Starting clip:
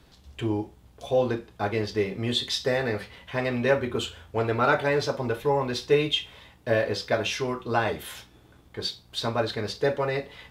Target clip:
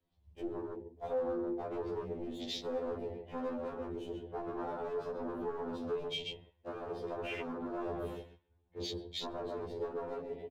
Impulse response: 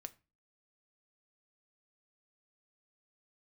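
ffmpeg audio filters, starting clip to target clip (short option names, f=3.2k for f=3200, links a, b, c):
-filter_complex "[0:a]acrossover=split=180|3000[a][b][c];[b]acompressor=threshold=-30dB:ratio=2.5[d];[a][d][c]amix=inputs=3:normalize=0,agate=range=-12dB:threshold=-44dB:ratio=16:detection=peak,asplit=2[e][f];[f]adelay=135,lowpass=f=1.7k:p=1,volume=-5dB,asplit=2[g][h];[h]adelay=135,lowpass=f=1.7k:p=1,volume=0.2,asplit=2[i][j];[j]adelay=135,lowpass=f=1.7k:p=1,volume=0.2[k];[e][g][i][k]amix=inputs=4:normalize=0,asplit=2[l][m];[1:a]atrim=start_sample=2205,lowpass=3.1k[n];[m][n]afir=irnorm=-1:irlink=0,volume=13dB[o];[l][o]amix=inputs=2:normalize=0,acompressor=threshold=-23dB:ratio=5,equalizer=f=1.4k:w=2.4:g=-11.5,asoftclip=type=hard:threshold=-30dB,afwtdn=0.0178,equalizer=f=87:w=0.44:g=-3.5,afftfilt=real='re*2*eq(mod(b,4),0)':imag='im*2*eq(mod(b,4),0)':win_size=2048:overlap=0.75,volume=-2.5dB"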